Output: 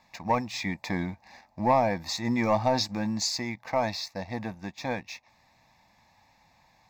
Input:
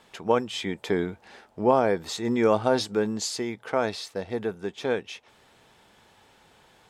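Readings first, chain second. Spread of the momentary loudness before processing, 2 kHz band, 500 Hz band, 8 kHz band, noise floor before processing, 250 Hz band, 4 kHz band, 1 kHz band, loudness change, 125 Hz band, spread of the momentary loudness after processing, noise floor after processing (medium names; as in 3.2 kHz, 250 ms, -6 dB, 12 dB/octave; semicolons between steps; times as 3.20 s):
12 LU, -0.5 dB, -5.5 dB, 0.0 dB, -59 dBFS, -2.0 dB, +1.0 dB, +1.0 dB, -2.5 dB, +2.0 dB, 12 LU, -64 dBFS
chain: waveshaping leveller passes 1; static phaser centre 2.1 kHz, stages 8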